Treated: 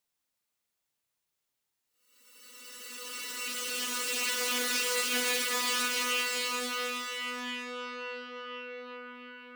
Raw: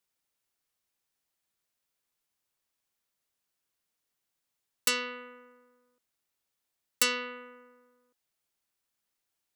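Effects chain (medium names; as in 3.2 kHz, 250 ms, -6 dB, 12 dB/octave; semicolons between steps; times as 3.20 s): Paulstretch 12×, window 0.50 s, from 4.47 s; loudspeaker Doppler distortion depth 0.23 ms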